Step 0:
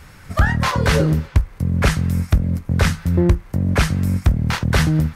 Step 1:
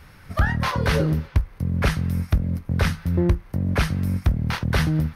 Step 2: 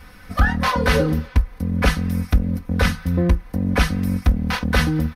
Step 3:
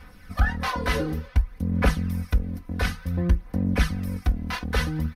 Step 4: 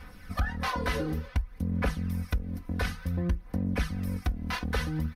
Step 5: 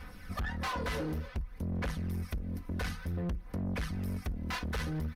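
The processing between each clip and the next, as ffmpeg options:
-af "equalizer=f=7.4k:t=o:w=0.33:g=-12,volume=-4.5dB"
-af "aecho=1:1:4:0.97,volume=1.5dB"
-af "aphaser=in_gain=1:out_gain=1:delay=3:decay=0.42:speed=0.56:type=sinusoidal,volume=-7.5dB"
-af "acompressor=threshold=-28dB:ratio=2.5"
-af "asoftclip=type=tanh:threshold=-30.5dB"

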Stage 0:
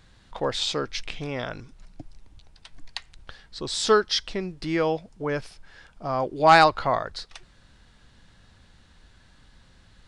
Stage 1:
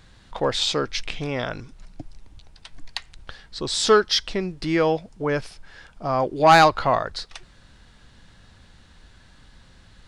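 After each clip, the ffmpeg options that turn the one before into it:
-af "acontrast=81,volume=-3dB"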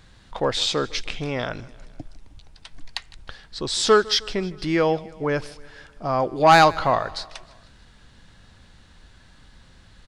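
-af "aecho=1:1:156|312|468|624:0.0841|0.0488|0.0283|0.0164"

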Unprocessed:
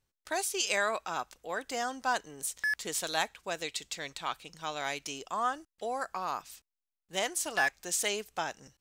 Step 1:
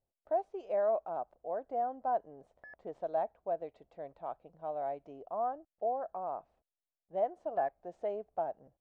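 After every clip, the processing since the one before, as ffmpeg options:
-af "lowpass=f=660:t=q:w=4.9,volume=-7.5dB"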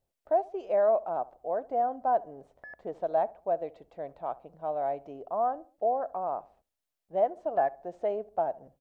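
-filter_complex "[0:a]asplit=2[a][b];[b]adelay=71,lowpass=f=1.2k:p=1,volume=-19.5dB,asplit=2[c][d];[d]adelay=71,lowpass=f=1.2k:p=1,volume=0.42,asplit=2[e][f];[f]adelay=71,lowpass=f=1.2k:p=1,volume=0.42[g];[a][c][e][g]amix=inputs=4:normalize=0,volume=6dB"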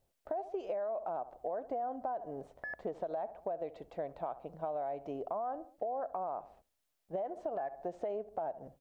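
-af "alimiter=level_in=2.5dB:limit=-24dB:level=0:latency=1:release=57,volume=-2.5dB,acompressor=threshold=-39dB:ratio=6,volume=4.5dB"

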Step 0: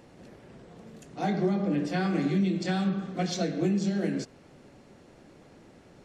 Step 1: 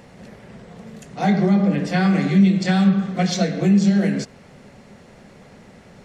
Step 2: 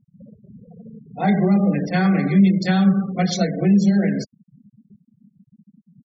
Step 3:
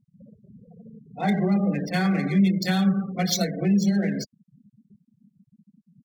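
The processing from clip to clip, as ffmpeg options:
-af "equalizer=f=200:t=o:w=0.33:g=5,equalizer=f=315:t=o:w=0.33:g=-12,equalizer=f=2k:t=o:w=0.33:g=4,volume=8.5dB"
-af "afftfilt=real='re*gte(hypot(re,im),0.0398)':imag='im*gte(hypot(re,im),0.0398)':win_size=1024:overlap=0.75"
-af "adynamicsmooth=sensitivity=4.5:basefreq=6k,aemphasis=mode=production:type=75fm,volume=-4.5dB"

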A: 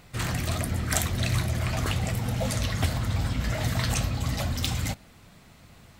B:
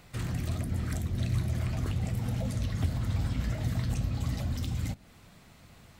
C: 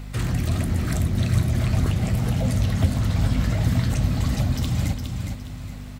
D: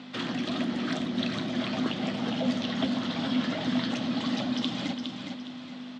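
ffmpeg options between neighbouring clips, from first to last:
-filter_complex "[0:a]acrossover=split=400[a][b];[b]acompressor=threshold=-41dB:ratio=6[c];[a][c]amix=inputs=2:normalize=0,volume=-2.5dB"
-af "aeval=exprs='val(0)+0.00794*(sin(2*PI*50*n/s)+sin(2*PI*2*50*n/s)/2+sin(2*PI*3*50*n/s)/3+sin(2*PI*4*50*n/s)/4+sin(2*PI*5*50*n/s)/5)':c=same,aecho=1:1:412|824|1236|1648:0.501|0.17|0.0579|0.0197,volume=8.5dB"
-af "highpass=f=230:w=0.5412,highpass=f=230:w=1.3066,equalizer=f=250:t=q:w=4:g=6,equalizer=f=420:t=q:w=4:g=-4,equalizer=f=2.2k:t=q:w=4:g=-3,equalizer=f=3.3k:t=q:w=4:g=8,lowpass=f=5k:w=0.5412,lowpass=f=5k:w=1.3066"

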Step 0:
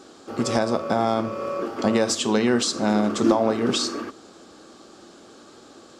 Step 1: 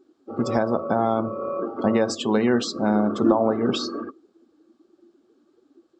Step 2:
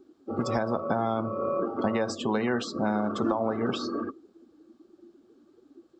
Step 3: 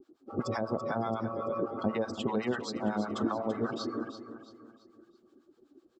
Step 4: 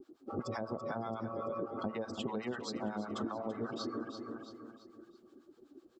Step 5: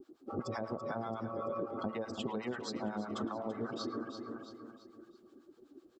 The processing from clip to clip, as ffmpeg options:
-af "aemphasis=mode=reproduction:type=cd,afftdn=nr=23:nf=-33"
-filter_complex "[0:a]lowshelf=f=190:g=9.5,acrossover=split=610|1600[a][b][c];[a]acompressor=threshold=-29dB:ratio=4[d];[b]acompressor=threshold=-29dB:ratio=4[e];[c]acompressor=threshold=-38dB:ratio=4[f];[d][e][f]amix=inputs=3:normalize=0"
-filter_complex "[0:a]acrossover=split=750[a][b];[a]aeval=exprs='val(0)*(1-1/2+1/2*cos(2*PI*8*n/s))':c=same[c];[b]aeval=exprs='val(0)*(1-1/2-1/2*cos(2*PI*8*n/s))':c=same[d];[c][d]amix=inputs=2:normalize=0,asplit=2[e][f];[f]aecho=0:1:335|670|1005|1340:0.282|0.11|0.0429|0.0167[g];[e][g]amix=inputs=2:normalize=0"
-af "acompressor=threshold=-40dB:ratio=3,volume=2.5dB"
-filter_complex "[0:a]asplit=2[a][b];[b]adelay=110,highpass=300,lowpass=3.4k,asoftclip=type=hard:threshold=-33dB,volume=-15dB[c];[a][c]amix=inputs=2:normalize=0"

